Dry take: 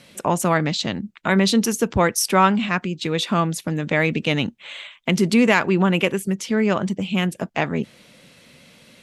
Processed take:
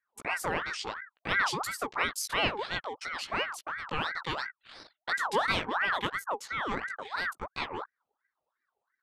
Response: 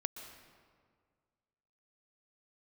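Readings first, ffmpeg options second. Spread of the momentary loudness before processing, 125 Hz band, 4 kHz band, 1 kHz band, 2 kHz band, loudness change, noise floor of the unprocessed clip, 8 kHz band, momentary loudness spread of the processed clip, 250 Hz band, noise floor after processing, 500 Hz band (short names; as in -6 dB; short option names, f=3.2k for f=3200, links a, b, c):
9 LU, -21.5 dB, -8.5 dB, -8.5 dB, -6.0 dB, -11.5 dB, -52 dBFS, -13.5 dB, 10 LU, -23.5 dB, under -85 dBFS, -15.0 dB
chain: -af "flanger=delay=15.5:depth=2.4:speed=0.64,anlmdn=0.631,aeval=exprs='val(0)*sin(2*PI*1200*n/s+1200*0.5/2.9*sin(2*PI*2.9*n/s))':c=same,volume=-7dB"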